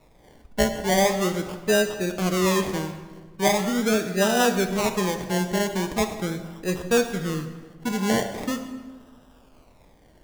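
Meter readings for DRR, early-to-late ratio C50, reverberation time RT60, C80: 6.5 dB, 9.0 dB, 1.4 s, 10.5 dB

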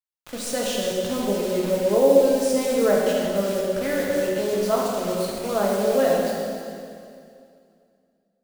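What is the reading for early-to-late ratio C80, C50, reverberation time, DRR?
0.5 dB, -1.0 dB, 2.4 s, -4.0 dB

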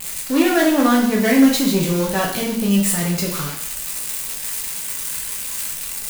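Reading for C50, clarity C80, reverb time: 5.0 dB, 8.0 dB, 0.65 s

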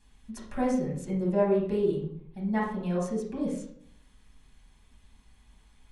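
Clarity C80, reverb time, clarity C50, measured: 8.0 dB, 0.65 s, 3.5 dB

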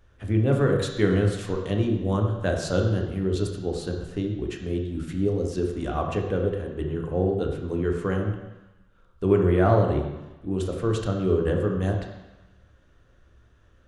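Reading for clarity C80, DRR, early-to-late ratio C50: 7.0 dB, 1.5 dB, 5.0 dB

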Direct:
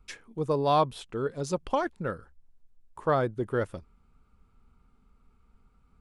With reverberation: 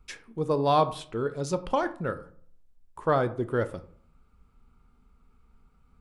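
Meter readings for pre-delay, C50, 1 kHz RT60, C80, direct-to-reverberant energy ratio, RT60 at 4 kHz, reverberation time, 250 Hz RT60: 9 ms, 16.0 dB, 0.50 s, 19.5 dB, 11.0 dB, 0.30 s, 0.55 s, 0.65 s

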